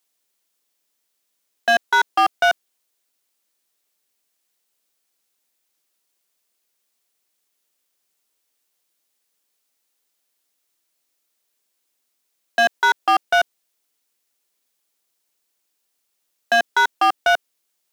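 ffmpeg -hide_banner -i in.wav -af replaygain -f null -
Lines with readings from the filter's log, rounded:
track_gain = +2.0 dB
track_peak = 0.295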